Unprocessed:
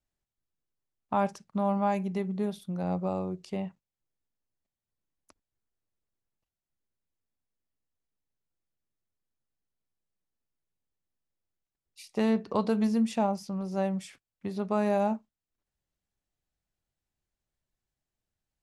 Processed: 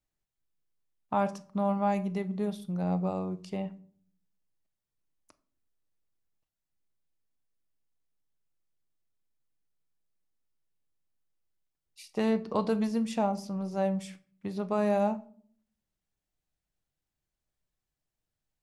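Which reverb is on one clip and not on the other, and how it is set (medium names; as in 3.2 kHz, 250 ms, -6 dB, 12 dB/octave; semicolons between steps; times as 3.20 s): simulated room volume 590 m³, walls furnished, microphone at 0.51 m; trim -1 dB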